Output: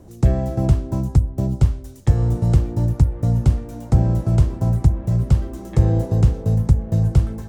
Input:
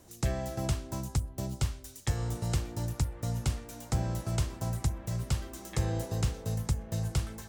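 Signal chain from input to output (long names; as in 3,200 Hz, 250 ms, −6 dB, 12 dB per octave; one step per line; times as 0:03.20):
tilt shelving filter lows +9.5 dB
level +6 dB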